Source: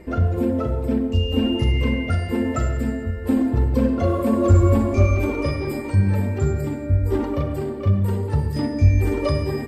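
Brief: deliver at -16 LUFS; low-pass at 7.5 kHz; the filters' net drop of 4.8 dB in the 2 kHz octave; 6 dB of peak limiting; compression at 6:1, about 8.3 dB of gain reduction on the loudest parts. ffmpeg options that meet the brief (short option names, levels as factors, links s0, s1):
-af "lowpass=7500,equalizer=f=2000:t=o:g=-6,acompressor=threshold=0.126:ratio=6,volume=3.16,alimiter=limit=0.447:level=0:latency=1"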